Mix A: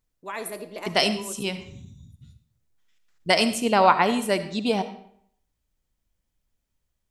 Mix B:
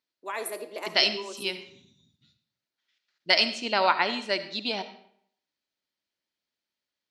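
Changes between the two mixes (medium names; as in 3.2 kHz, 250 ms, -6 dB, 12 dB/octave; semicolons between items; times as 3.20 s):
first voice: add high-pass 290 Hz 24 dB/octave; second voice: add cabinet simulation 420–5400 Hz, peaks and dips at 470 Hz -10 dB, 750 Hz -7 dB, 1.1 kHz -7 dB, 4.3 kHz +6 dB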